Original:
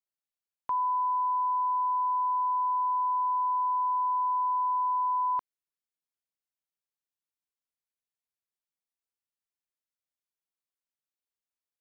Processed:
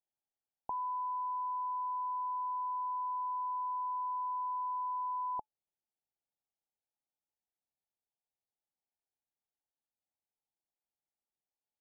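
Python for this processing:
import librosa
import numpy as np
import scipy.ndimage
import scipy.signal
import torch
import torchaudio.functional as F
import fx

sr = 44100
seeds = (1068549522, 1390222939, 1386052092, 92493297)

y = fx.curve_eq(x, sr, hz=(570.0, 860.0, 1200.0), db=(0, 7, -28))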